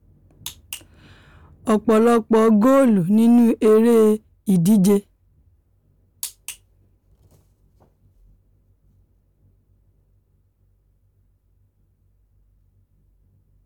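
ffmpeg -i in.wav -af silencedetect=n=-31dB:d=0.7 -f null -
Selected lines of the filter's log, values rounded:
silence_start: 0.77
silence_end: 1.67 | silence_duration: 0.90
silence_start: 5.00
silence_end: 6.23 | silence_duration: 1.23
silence_start: 6.53
silence_end: 13.65 | silence_duration: 7.13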